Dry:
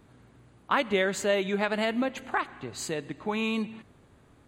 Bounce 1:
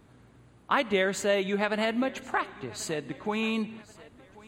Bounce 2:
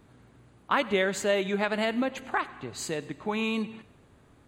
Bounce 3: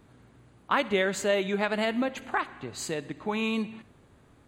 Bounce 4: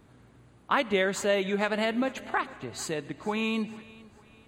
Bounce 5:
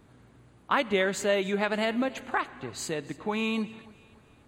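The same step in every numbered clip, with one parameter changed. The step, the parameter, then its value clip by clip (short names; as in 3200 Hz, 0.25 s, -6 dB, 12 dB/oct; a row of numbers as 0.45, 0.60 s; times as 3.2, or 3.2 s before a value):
thinning echo, time: 1086, 97, 63, 448, 287 ms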